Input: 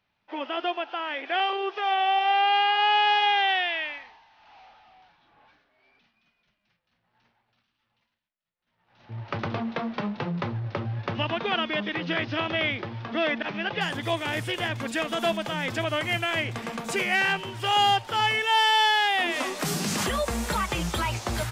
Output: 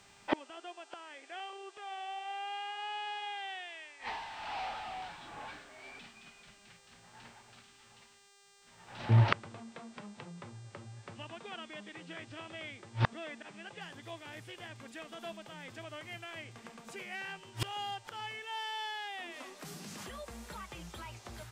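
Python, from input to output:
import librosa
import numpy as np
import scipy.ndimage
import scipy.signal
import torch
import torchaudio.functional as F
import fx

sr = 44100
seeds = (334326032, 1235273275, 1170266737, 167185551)

y = fx.gate_flip(x, sr, shuts_db=-27.0, range_db=-32)
y = fx.dmg_buzz(y, sr, base_hz=400.0, harmonics=22, level_db=-77.0, tilt_db=-1, odd_only=False)
y = y * librosa.db_to_amplitude(13.5)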